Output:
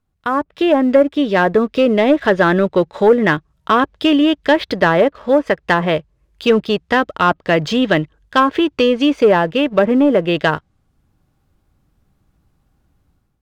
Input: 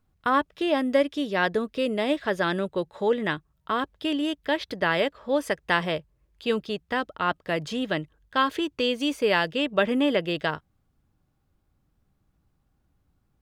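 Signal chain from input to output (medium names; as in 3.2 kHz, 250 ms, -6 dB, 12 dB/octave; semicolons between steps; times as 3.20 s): low-pass that closes with the level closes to 1.1 kHz, closed at -18.5 dBFS; level rider gain up to 11 dB; waveshaping leveller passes 1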